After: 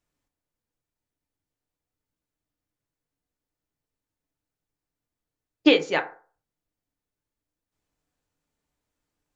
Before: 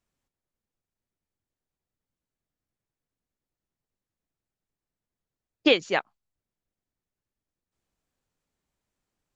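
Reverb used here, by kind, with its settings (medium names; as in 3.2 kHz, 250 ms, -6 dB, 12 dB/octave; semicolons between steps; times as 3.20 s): FDN reverb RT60 0.41 s, low-frequency decay 0.8×, high-frequency decay 0.45×, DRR 4.5 dB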